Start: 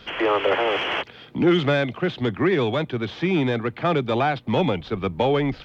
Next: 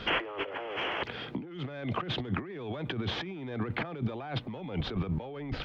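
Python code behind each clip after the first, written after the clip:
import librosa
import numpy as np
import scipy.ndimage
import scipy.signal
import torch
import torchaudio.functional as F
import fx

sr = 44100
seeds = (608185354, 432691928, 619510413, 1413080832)

y = fx.high_shelf(x, sr, hz=4900.0, db=-11.5)
y = fx.over_compress(y, sr, threshold_db=-33.0, ratio=-1.0)
y = y * 10.0 ** (-3.0 / 20.0)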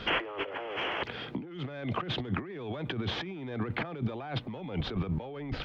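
y = x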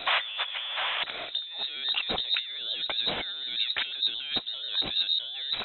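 y = fx.freq_invert(x, sr, carrier_hz=3900)
y = y * 10.0 ** (3.5 / 20.0)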